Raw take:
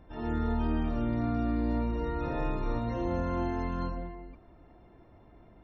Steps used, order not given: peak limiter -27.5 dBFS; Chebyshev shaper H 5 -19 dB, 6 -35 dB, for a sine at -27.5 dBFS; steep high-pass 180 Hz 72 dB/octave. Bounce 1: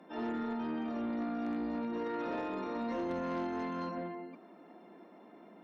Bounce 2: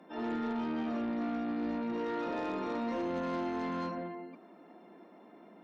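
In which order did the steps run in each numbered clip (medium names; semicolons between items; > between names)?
peak limiter > steep high-pass > Chebyshev shaper; steep high-pass > peak limiter > Chebyshev shaper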